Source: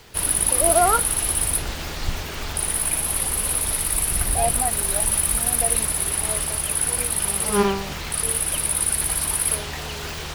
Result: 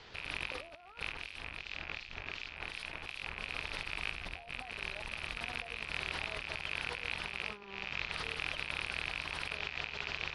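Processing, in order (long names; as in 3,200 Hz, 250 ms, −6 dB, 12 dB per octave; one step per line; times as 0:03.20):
loose part that buzzes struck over −34 dBFS, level −9 dBFS
low-pass filter 4,700 Hz 24 dB per octave
low-shelf EQ 460 Hz −7 dB
brickwall limiter −16 dBFS, peak gain reduction 11 dB
compressor whose output falls as the input rises −34 dBFS, ratio −0.5
0:01.12–0:03.41: two-band tremolo in antiphase 2.7 Hz, depth 70%, crossover 2,400 Hz
level −6.5 dB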